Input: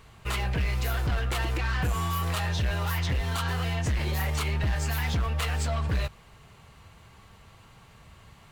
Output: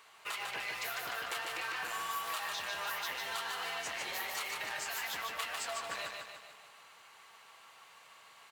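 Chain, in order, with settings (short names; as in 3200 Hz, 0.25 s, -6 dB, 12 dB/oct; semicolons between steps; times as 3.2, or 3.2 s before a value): HPF 760 Hz 12 dB/oct; compressor, threshold -35 dBFS, peak gain reduction 7.5 dB; 1.5–3.02 requantised 10-bit, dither none; feedback echo 0.149 s, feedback 53%, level -4 dB; gain -1.5 dB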